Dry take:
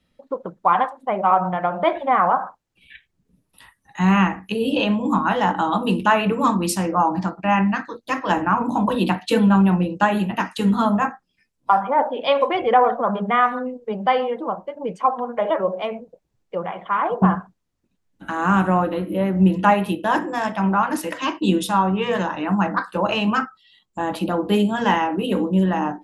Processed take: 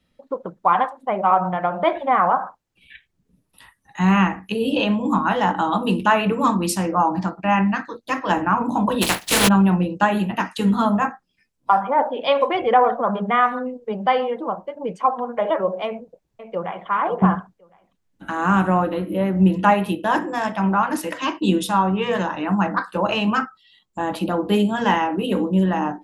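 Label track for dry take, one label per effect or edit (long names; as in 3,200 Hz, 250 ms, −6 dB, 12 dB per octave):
9.010000	9.470000	compressing power law on the bin magnitudes exponent 0.3
15.860000	16.860000	delay throw 530 ms, feedback 15%, level −10.5 dB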